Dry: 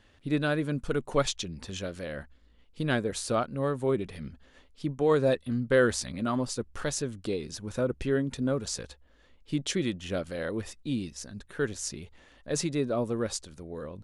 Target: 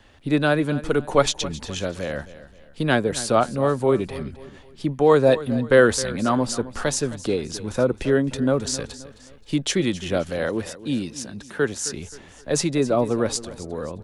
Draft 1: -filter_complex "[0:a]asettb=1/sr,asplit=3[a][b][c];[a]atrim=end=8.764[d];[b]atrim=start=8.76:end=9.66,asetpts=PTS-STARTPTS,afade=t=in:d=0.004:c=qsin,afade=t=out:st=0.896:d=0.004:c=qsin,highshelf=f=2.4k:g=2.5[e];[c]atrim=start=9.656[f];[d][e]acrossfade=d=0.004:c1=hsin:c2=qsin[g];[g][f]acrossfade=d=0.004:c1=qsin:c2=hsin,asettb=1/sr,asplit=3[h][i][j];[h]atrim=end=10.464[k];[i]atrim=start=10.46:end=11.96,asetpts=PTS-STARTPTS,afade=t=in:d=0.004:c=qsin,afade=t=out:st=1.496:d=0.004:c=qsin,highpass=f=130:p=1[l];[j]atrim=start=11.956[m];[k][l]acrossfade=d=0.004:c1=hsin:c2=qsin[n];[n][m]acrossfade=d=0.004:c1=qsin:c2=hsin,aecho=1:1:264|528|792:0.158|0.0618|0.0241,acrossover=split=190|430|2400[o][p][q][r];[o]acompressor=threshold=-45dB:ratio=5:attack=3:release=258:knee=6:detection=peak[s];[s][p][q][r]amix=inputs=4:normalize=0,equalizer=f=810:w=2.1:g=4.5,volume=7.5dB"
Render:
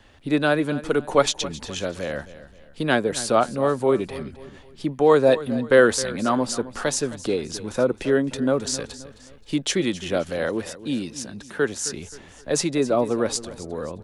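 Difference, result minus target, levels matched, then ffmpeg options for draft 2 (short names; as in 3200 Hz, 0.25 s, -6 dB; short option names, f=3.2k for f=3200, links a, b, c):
compressor: peak gain reduction +9.5 dB
-filter_complex "[0:a]asettb=1/sr,asplit=3[a][b][c];[a]atrim=end=8.764[d];[b]atrim=start=8.76:end=9.66,asetpts=PTS-STARTPTS,afade=t=in:d=0.004:c=qsin,afade=t=out:st=0.896:d=0.004:c=qsin,highshelf=f=2.4k:g=2.5[e];[c]atrim=start=9.656[f];[d][e]acrossfade=d=0.004:c1=hsin:c2=qsin[g];[g][f]acrossfade=d=0.004:c1=qsin:c2=hsin,asettb=1/sr,asplit=3[h][i][j];[h]atrim=end=10.464[k];[i]atrim=start=10.46:end=11.96,asetpts=PTS-STARTPTS,afade=t=in:d=0.004:c=qsin,afade=t=out:st=1.496:d=0.004:c=qsin,highpass=f=130:p=1[l];[j]atrim=start=11.956[m];[k][l]acrossfade=d=0.004:c1=hsin:c2=qsin[n];[n][m]acrossfade=d=0.004:c1=qsin:c2=hsin,aecho=1:1:264|528|792:0.158|0.0618|0.0241,acrossover=split=190|430|2400[o][p][q][r];[o]acompressor=threshold=-33dB:ratio=5:attack=3:release=258:knee=6:detection=peak[s];[s][p][q][r]amix=inputs=4:normalize=0,equalizer=f=810:w=2.1:g=4.5,volume=7.5dB"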